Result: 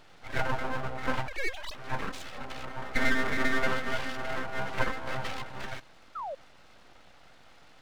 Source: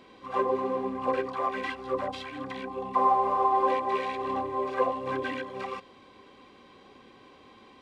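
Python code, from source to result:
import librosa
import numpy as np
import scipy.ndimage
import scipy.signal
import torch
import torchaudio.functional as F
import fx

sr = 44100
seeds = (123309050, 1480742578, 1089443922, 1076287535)

y = fx.sine_speech(x, sr, at=(1.28, 1.75))
y = np.abs(y)
y = fx.spec_paint(y, sr, seeds[0], shape='fall', start_s=6.15, length_s=0.2, low_hz=510.0, high_hz=1400.0, level_db=-36.0)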